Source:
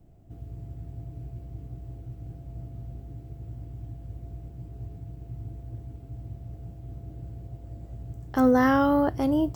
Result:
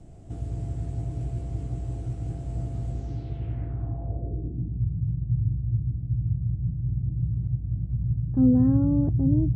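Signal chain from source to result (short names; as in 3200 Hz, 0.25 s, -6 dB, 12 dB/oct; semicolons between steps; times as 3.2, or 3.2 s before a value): low-pass sweep 8300 Hz -> 150 Hz, 2.91–4.87; gain +8.5 dB; AAC 32 kbps 24000 Hz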